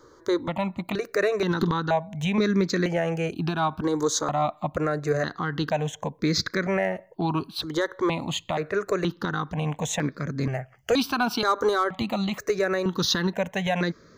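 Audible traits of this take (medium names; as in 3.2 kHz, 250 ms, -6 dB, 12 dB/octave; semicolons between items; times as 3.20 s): notches that jump at a steady rate 2.1 Hz 700–2900 Hz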